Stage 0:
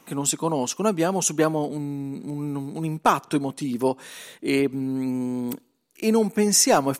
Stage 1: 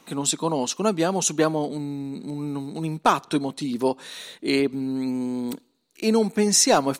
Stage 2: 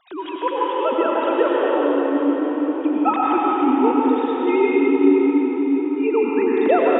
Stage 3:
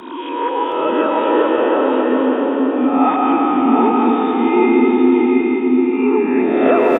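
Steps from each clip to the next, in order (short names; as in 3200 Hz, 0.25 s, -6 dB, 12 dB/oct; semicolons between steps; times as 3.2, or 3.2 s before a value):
thirty-one-band EQ 125 Hz -5 dB, 4000 Hz +9 dB, 12500 Hz -9 dB
sine-wave speech; reverb RT60 5.7 s, pre-delay 83 ms, DRR -5.5 dB
spectral swells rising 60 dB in 0.88 s; frequency shift -25 Hz; on a send: echo 0.72 s -4 dB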